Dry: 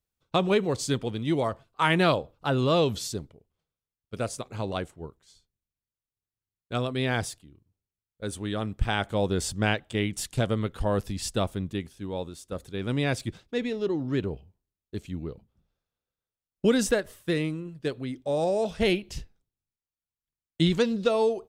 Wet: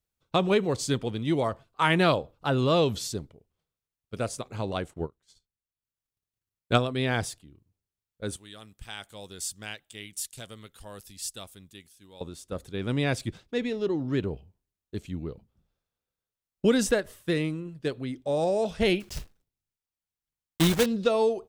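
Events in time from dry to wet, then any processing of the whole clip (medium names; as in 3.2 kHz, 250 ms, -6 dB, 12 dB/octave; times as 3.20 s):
4.93–6.84 s: transient shaper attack +10 dB, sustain -11 dB
8.36–12.21 s: pre-emphasis filter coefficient 0.9
19.00–20.88 s: block-companded coder 3-bit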